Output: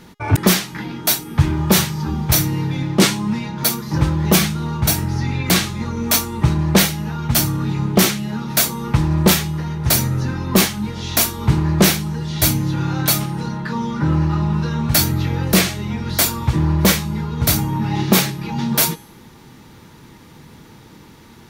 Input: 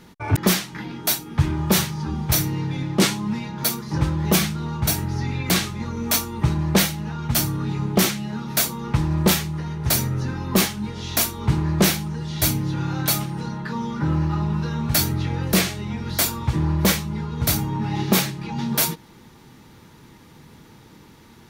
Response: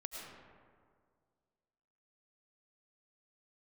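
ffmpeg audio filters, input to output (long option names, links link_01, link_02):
-af "bandreject=frequency=413.6:width_type=h:width=4,bandreject=frequency=827.2:width_type=h:width=4,bandreject=frequency=1240.8:width_type=h:width=4,bandreject=frequency=1654.4:width_type=h:width=4,bandreject=frequency=2068:width_type=h:width=4,bandreject=frequency=2481.6:width_type=h:width=4,bandreject=frequency=2895.2:width_type=h:width=4,bandreject=frequency=3308.8:width_type=h:width=4,bandreject=frequency=3722.4:width_type=h:width=4,bandreject=frequency=4136:width_type=h:width=4,bandreject=frequency=4549.6:width_type=h:width=4,bandreject=frequency=4963.2:width_type=h:width=4,bandreject=frequency=5376.8:width_type=h:width=4,bandreject=frequency=5790.4:width_type=h:width=4,bandreject=frequency=6204:width_type=h:width=4,bandreject=frequency=6617.6:width_type=h:width=4,bandreject=frequency=7031.2:width_type=h:width=4,bandreject=frequency=7444.8:width_type=h:width=4,bandreject=frequency=7858.4:width_type=h:width=4,bandreject=frequency=8272:width_type=h:width=4,bandreject=frequency=8685.6:width_type=h:width=4,bandreject=frequency=9099.2:width_type=h:width=4,bandreject=frequency=9512.8:width_type=h:width=4,bandreject=frequency=9926.4:width_type=h:width=4,bandreject=frequency=10340:width_type=h:width=4,bandreject=frequency=10753.6:width_type=h:width=4,bandreject=frequency=11167.2:width_type=h:width=4,bandreject=frequency=11580.8:width_type=h:width=4,bandreject=frequency=11994.4:width_type=h:width=4,bandreject=frequency=12408:width_type=h:width=4,bandreject=frequency=12821.6:width_type=h:width=4,bandreject=frequency=13235.2:width_type=h:width=4,volume=4.5dB"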